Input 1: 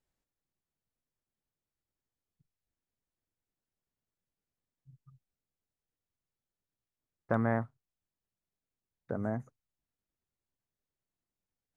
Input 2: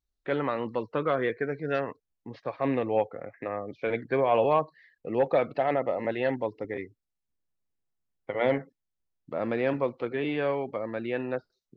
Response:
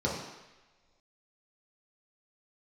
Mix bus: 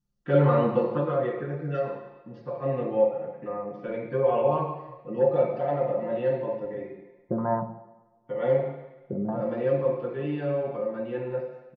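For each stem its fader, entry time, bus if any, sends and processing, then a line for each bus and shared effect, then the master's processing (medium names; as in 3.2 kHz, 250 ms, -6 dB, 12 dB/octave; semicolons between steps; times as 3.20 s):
-1.5 dB, 0.00 s, send -18.5 dB, step-sequenced low-pass 4.2 Hz 210–1700 Hz
0.76 s -2 dB -> 1.11 s -10.5 dB, 0.00 s, send -5 dB, none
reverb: on, pre-delay 3 ms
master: comb 5.7 ms, depth 70%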